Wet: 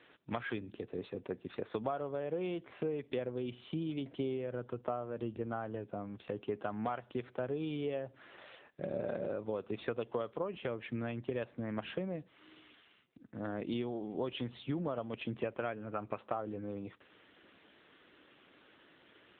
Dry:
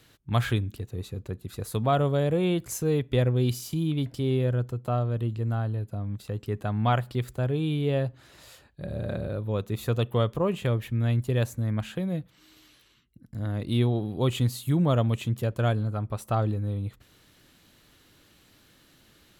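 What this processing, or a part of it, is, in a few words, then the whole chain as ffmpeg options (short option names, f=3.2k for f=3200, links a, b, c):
voicemail: -filter_complex "[0:a]asplit=3[a][b][c];[a]afade=t=out:st=15.39:d=0.02[d];[b]highshelf=f=3.6k:t=q:w=3:g=-12,afade=t=in:st=15.39:d=0.02,afade=t=out:st=16.15:d=0.02[e];[c]afade=t=in:st=16.15:d=0.02[f];[d][e][f]amix=inputs=3:normalize=0,highpass=310,lowpass=3.2k,acompressor=threshold=-35dB:ratio=12,volume=3dB" -ar 8000 -c:a libopencore_amrnb -b:a 7950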